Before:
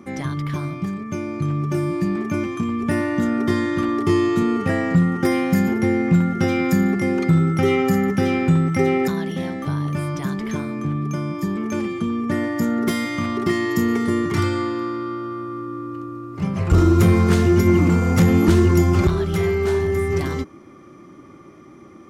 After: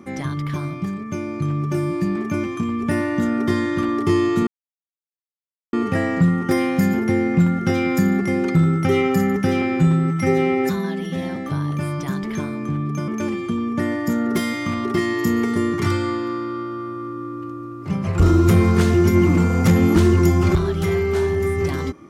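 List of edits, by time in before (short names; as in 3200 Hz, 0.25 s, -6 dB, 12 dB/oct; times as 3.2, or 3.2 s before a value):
4.47 insert silence 1.26 s
8.36–9.52 stretch 1.5×
11.24–11.6 cut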